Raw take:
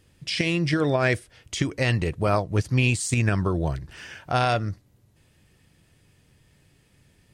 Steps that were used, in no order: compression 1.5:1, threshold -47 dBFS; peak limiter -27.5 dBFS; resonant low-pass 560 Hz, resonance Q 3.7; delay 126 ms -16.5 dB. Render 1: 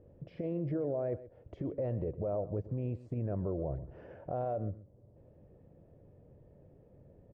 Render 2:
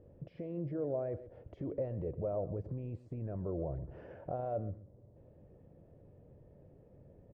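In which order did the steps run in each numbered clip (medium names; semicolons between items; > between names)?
compression > resonant low-pass > peak limiter > delay; peak limiter > delay > compression > resonant low-pass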